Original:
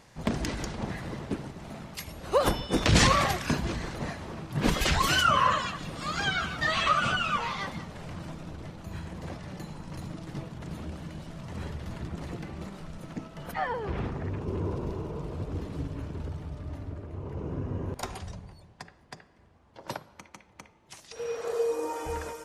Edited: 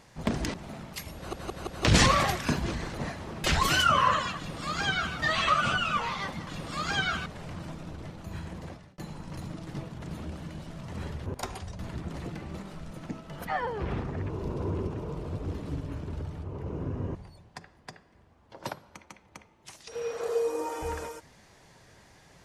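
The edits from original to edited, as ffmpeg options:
-filter_complex "[0:a]asplit=16[s0][s1][s2][s3][s4][s5][s6][s7][s8][s9][s10][s11][s12][s13][s14][s15];[s0]atrim=end=0.542[s16];[s1]atrim=start=1.548:end=2.342[s17];[s2]atrim=start=2.168:end=2.342[s18];[s3]atrim=start=2.168:end=2.342[s19];[s4]atrim=start=2.168:end=2.342[s20];[s5]atrim=start=2.848:end=4.452[s21];[s6]atrim=start=4.828:end=7.862[s22];[s7]atrim=start=5.758:end=6.552[s23];[s8]atrim=start=7.858:end=9.58,asetpts=PTS-STARTPTS,afade=t=out:st=1.282:d=0.44[s24];[s9]atrim=start=9.58:end=11.862,asetpts=PTS-STARTPTS,afade=t=in:d=0.004:c=hsin[s25];[s10]atrim=start=17.858:end=18.392[s26];[s11]atrim=start=11.858:end=14.372[s27];[s12]atrim=start=14.368:end=15.052,asetpts=PTS-STARTPTS,areverse[s28];[s13]atrim=start=15.048:end=16.512[s29];[s14]atrim=start=17.148:end=17.862[s30];[s15]atrim=start=18.388[s31];[s16][s17]acrossfade=d=0.004:c1=hsin:c2=hsin[s32];[s32][s18]acrossfade=d=0.004:c1=hsin:c2=hsin[s33];[s33][s19]acrossfade=d=0.004:c1=hsin:c2=hsin[s34];[s34][s20]acrossfade=d=0.004:c1=hsin:c2=hsin[s35];[s35][s21]acrossfade=d=0.004:c1=hsin:c2=hsin[s36];[s36][s22]acrossfade=d=0.004:c1=hsin:c2=hsin[s37];[s37][s23]acrossfade=d=0.004:c1=hsin:c2=hsin[s38];[s24][s25]concat=n=2:v=0:a=1[s39];[s38][s39]acrossfade=d=0.004:c1=hsin:c2=hsin[s40];[s40][s26]acrossfade=d=0.004:c1=hsin:c2=hsin[s41];[s41][s27]acrossfade=d=0.004:c1=hsin:c2=hsin[s42];[s42][s28]acrossfade=d=0.004:c1=hsin:c2=hsin[s43];[s43][s29]acrossfade=d=0.004:c1=hsin:c2=hsin[s44];[s44][s30]acrossfade=d=0.004:c1=hsin:c2=hsin[s45];[s45][s31]acrossfade=d=0.004:c1=hsin:c2=hsin"

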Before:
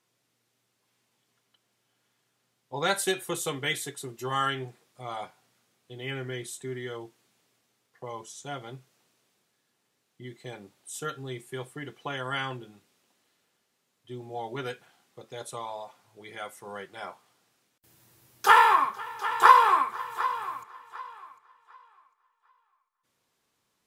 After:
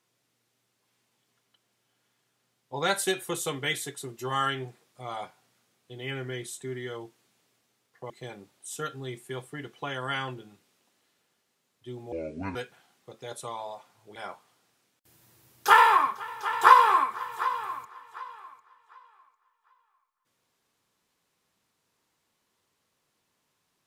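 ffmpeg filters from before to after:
-filter_complex "[0:a]asplit=5[s0][s1][s2][s3][s4];[s0]atrim=end=8.102[s5];[s1]atrim=start=10.328:end=14.354[s6];[s2]atrim=start=14.35:end=14.65,asetpts=PTS-STARTPTS,asetrate=30429,aresample=44100[s7];[s3]atrim=start=14.646:end=16.252[s8];[s4]atrim=start=16.938[s9];[s5][s6]acrossfade=d=0.004:c1=hsin:c2=hsin[s10];[s10][s7]acrossfade=d=0.004:c1=hsin:c2=hsin[s11];[s11][s8]acrossfade=d=0.004:c1=hsin:c2=hsin[s12];[s12][s9]acrossfade=d=0.004:c1=hsin:c2=hsin"

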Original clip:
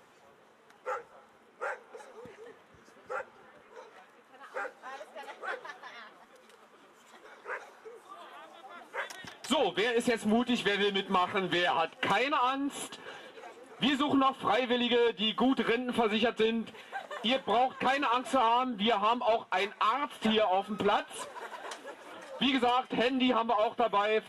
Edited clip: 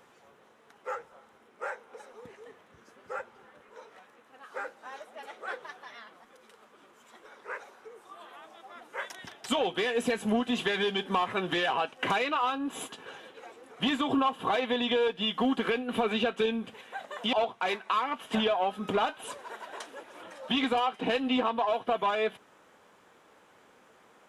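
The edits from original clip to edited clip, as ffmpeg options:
-filter_complex "[0:a]asplit=2[s0][s1];[s0]atrim=end=17.332[s2];[s1]atrim=start=19.238[s3];[s2][s3]acrossfade=d=0.004:c1=hsin:c2=hsin"

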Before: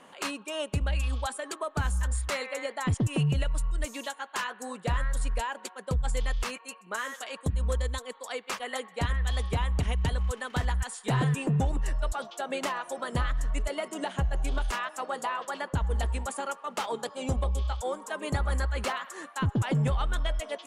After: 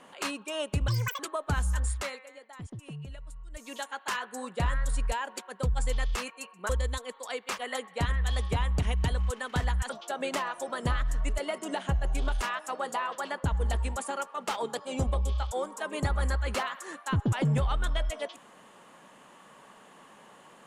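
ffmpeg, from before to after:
-filter_complex "[0:a]asplit=7[s0][s1][s2][s3][s4][s5][s6];[s0]atrim=end=0.884[s7];[s1]atrim=start=0.88:end=1.47,asetpts=PTS-STARTPTS,asetrate=82908,aresample=44100[s8];[s2]atrim=start=1.466:end=2.53,asetpts=PTS-STARTPTS,afade=t=out:st=0.714:d=0.35:silence=0.16788[s9];[s3]atrim=start=2.53:end=3.79,asetpts=PTS-STARTPTS,volume=0.168[s10];[s4]atrim=start=3.79:end=6.972,asetpts=PTS-STARTPTS,afade=t=in:d=0.35:silence=0.16788[s11];[s5]atrim=start=7.698:end=10.902[s12];[s6]atrim=start=12.188[s13];[s7][s8]acrossfade=d=0.004:c1=hsin:c2=hsin[s14];[s9][s10][s11]concat=n=3:v=0:a=1[s15];[s14][s15]acrossfade=d=0.004:c1=hsin:c2=hsin[s16];[s16][s12]acrossfade=d=0.004:c1=hsin:c2=hsin[s17];[s17][s13]acrossfade=d=0.004:c1=hsin:c2=hsin"

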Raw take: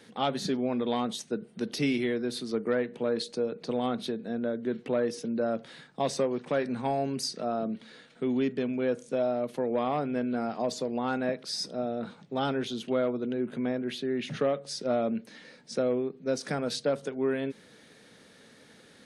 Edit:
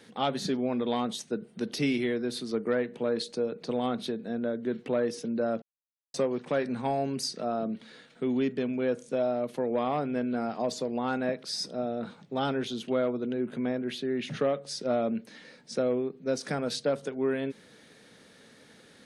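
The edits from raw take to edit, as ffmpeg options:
-filter_complex "[0:a]asplit=3[s0][s1][s2];[s0]atrim=end=5.62,asetpts=PTS-STARTPTS,afade=t=out:st=5.616:d=0.004:c=hsin[s3];[s1]atrim=start=5.62:end=6.14,asetpts=PTS-STARTPTS,volume=0[s4];[s2]atrim=start=6.14,asetpts=PTS-STARTPTS,afade=t=in:d=0.004:c=hsin[s5];[s3][s4][s5]concat=n=3:v=0:a=1"

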